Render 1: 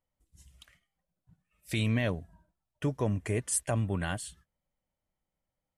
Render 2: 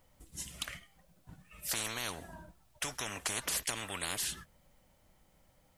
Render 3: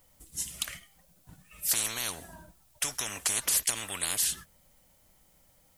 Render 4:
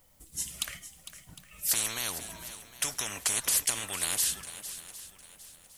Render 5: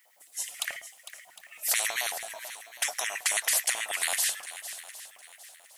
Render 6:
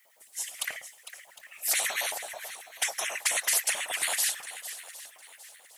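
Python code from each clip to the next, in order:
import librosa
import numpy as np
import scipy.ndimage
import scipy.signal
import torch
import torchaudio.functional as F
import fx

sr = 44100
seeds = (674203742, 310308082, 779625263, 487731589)

y1 = fx.spectral_comp(x, sr, ratio=10.0)
y2 = fx.high_shelf(y1, sr, hz=4700.0, db=11.5)
y3 = fx.echo_swing(y2, sr, ms=757, ratio=1.5, feedback_pct=31, wet_db=-13)
y4 = fx.filter_lfo_highpass(y3, sr, shape='square', hz=9.2, low_hz=690.0, high_hz=1900.0, q=5.2)
y5 = fx.whisperise(y4, sr, seeds[0])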